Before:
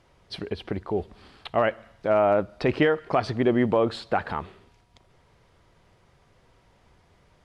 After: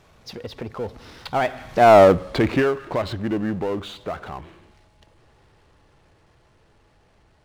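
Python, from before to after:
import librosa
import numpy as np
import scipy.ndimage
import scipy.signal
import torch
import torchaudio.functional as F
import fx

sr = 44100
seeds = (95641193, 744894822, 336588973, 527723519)

y = fx.doppler_pass(x, sr, speed_mps=47, closest_m=6.4, pass_at_s=1.97)
y = fx.power_curve(y, sr, exponent=0.7)
y = y * librosa.db_to_amplitude(8.5)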